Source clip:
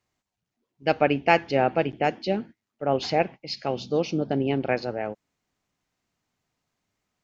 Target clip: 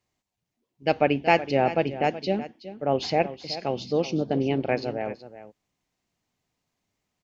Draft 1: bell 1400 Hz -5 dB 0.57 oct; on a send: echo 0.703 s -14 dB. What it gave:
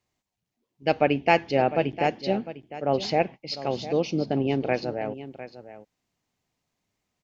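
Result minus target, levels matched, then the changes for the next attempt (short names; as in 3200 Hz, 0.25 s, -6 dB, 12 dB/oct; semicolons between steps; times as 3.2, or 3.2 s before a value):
echo 0.329 s late
change: echo 0.374 s -14 dB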